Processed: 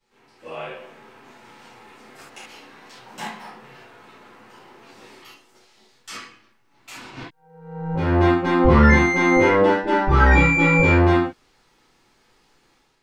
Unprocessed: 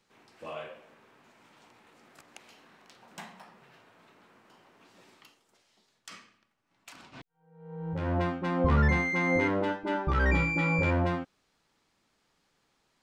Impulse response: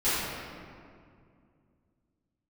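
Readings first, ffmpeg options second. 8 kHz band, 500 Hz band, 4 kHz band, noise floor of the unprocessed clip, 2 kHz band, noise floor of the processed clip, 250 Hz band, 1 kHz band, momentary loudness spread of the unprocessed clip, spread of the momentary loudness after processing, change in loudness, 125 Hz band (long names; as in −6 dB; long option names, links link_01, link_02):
can't be measured, +12.0 dB, +11.0 dB, −74 dBFS, +10.5 dB, −62 dBFS, +11.5 dB, +12.0 dB, 22 LU, 20 LU, +11.5 dB, +9.5 dB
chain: -filter_complex "[0:a]dynaudnorm=framelen=410:gausssize=3:maxgain=10dB[link_01];[1:a]atrim=start_sample=2205,atrim=end_sample=3969[link_02];[link_01][link_02]afir=irnorm=-1:irlink=0,volume=-7.5dB"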